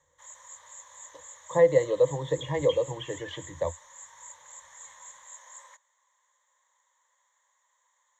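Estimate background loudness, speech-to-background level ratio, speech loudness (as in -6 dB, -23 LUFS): -44.5 LUFS, 18.0 dB, -26.5 LUFS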